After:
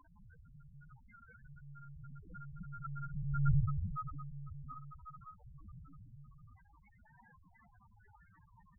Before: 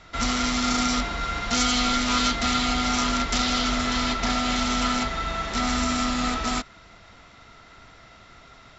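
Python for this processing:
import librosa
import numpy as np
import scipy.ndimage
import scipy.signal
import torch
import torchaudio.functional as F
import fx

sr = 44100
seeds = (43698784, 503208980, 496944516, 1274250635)

y = fx.doppler_pass(x, sr, speed_mps=19, closest_m=1.8, pass_at_s=3.52)
y = fx.quant_dither(y, sr, seeds[0], bits=8, dither='triangular')
y = scipy.signal.sosfilt(scipy.signal.butter(4, 2300.0, 'lowpass', fs=sr, output='sos'), y)
y = fx.peak_eq(y, sr, hz=64.0, db=8.0, octaves=0.65)
y = fx.lpc_monotone(y, sr, seeds[1], pitch_hz=140.0, order=8)
y = fx.spec_topn(y, sr, count=4)
y = fx.low_shelf(y, sr, hz=82.0, db=-10.0)
y = y * librosa.db_to_amplitude(6.5)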